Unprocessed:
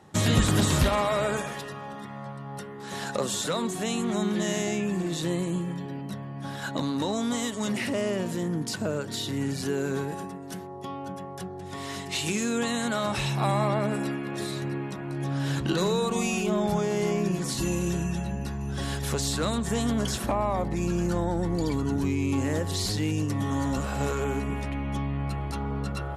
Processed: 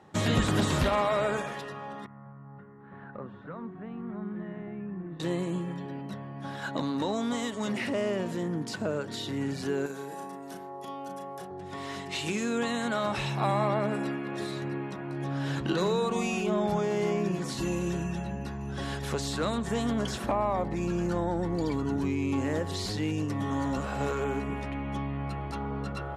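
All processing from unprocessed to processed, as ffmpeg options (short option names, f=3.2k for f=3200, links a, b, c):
-filter_complex "[0:a]asettb=1/sr,asplit=3[a][b][c];[a]atrim=end=2.064[d];[b]atrim=start=2.06:end=5.2,asetpts=PTS-STARTPTS,afade=t=in:d=0.004:c=qsin,afade=t=out:st=3.136:d=0.004:c=qsin,lowpass=f=1.5k:w=0.5412,lowpass=f=1.5k:w=1.3066,equalizer=f=620:w=0.46:g=-14[e];[c]atrim=start=5.196[f];[d][e]acrossfade=d=0.004:c1=hsin:c2=qsin[g];[g][f]acrossfade=d=0.004:c1=qsin:c2=hsin,asettb=1/sr,asplit=3[h][i][j];[h]atrim=end=9.864[k];[i]atrim=start=9.86:end=11.51,asetpts=PTS-STARTPTS,afade=t=in:d=0.004:c=qsin,afade=t=out:st=1.646:d=0.004:c=qsin,aemphasis=mode=production:type=bsi,acrossover=split=1200|3500[l][m][n];[l]acompressor=threshold=-37dB:ratio=4[o];[m]acompressor=threshold=-54dB:ratio=4[p];[n]acompressor=threshold=-46dB:ratio=4[q];[o][p][q]amix=inputs=3:normalize=0,asplit=2[r][s];[s]adelay=36,volume=-5dB[t];[r][t]amix=inputs=2:normalize=0,atrim=end_sample=72765[u];[j]atrim=start=11.506[v];[k][u]acrossfade=d=0.004:c1=hsin:c2=qsin[w];[w][v]acrossfade=d=0.004:c1=qsin:c2=hsin,lowpass=f=2.9k:p=1,lowshelf=f=170:g=-7"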